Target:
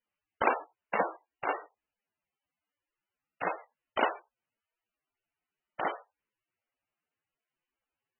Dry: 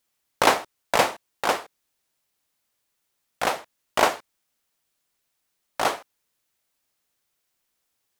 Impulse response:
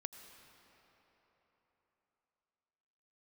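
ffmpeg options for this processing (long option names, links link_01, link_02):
-filter_complex "[0:a]acrusher=bits=3:mode=log:mix=0:aa=0.000001[link_01];[1:a]atrim=start_sample=2205,atrim=end_sample=3528,asetrate=41895,aresample=44100[link_02];[link_01][link_02]afir=irnorm=-1:irlink=0,volume=-4.5dB" -ar 22050 -c:a libmp3lame -b:a 8k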